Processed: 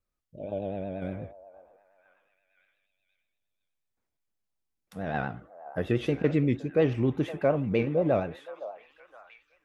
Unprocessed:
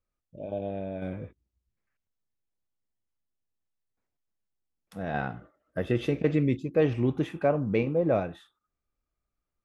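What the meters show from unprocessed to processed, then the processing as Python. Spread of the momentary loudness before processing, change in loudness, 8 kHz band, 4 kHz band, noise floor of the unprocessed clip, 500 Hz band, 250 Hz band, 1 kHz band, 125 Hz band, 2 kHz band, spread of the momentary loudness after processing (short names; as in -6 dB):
14 LU, 0.0 dB, n/a, +0.5 dB, under -85 dBFS, 0.0 dB, 0.0 dB, 0.0 dB, 0.0 dB, 0.0 dB, 15 LU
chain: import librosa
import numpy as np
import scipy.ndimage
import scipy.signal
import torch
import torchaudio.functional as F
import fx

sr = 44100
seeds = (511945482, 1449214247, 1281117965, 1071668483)

y = fx.echo_stepped(x, sr, ms=517, hz=780.0, octaves=0.7, feedback_pct=70, wet_db=-10.5)
y = fx.vibrato(y, sr, rate_hz=8.4, depth_cents=73.0)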